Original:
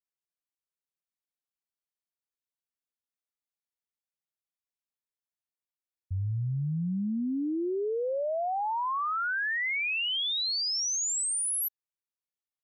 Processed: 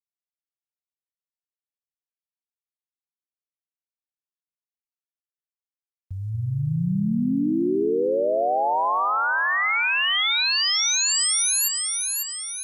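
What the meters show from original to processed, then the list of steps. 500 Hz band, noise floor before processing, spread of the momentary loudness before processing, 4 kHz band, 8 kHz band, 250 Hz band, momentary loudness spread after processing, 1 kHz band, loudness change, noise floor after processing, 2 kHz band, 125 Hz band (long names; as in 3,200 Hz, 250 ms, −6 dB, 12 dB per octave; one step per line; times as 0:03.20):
+8.5 dB, below −85 dBFS, 5 LU, +8.5 dB, +8.5 dB, +8.0 dB, 8 LU, +8.5 dB, +8.0 dB, below −85 dBFS, +8.5 dB, +5.5 dB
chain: centre clipping without the shift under −58.5 dBFS
parametric band 88 Hz −8.5 dB 0.72 octaves
echo with a time of its own for lows and highs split 1,000 Hz, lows 235 ms, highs 548 ms, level −4 dB
level +6.5 dB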